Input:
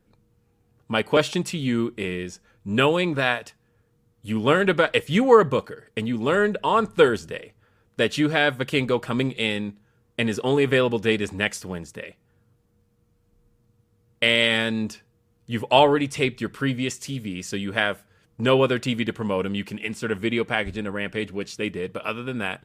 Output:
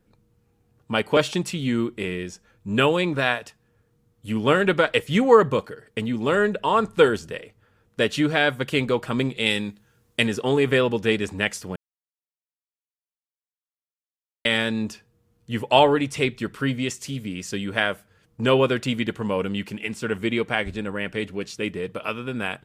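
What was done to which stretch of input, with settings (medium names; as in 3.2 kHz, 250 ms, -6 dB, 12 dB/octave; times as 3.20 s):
9.46–10.27 s: treble shelf 2.5 kHz +10 dB
11.76–14.45 s: mute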